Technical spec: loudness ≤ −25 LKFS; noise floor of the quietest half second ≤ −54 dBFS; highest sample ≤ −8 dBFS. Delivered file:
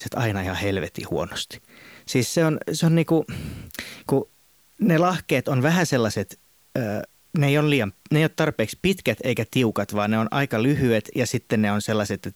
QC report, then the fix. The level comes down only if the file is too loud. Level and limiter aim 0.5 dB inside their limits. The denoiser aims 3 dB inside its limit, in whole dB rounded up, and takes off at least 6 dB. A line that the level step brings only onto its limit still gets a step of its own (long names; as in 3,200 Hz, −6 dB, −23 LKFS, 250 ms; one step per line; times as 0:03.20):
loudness −23.0 LKFS: out of spec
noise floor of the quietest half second −58 dBFS: in spec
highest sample −6.5 dBFS: out of spec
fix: level −2.5 dB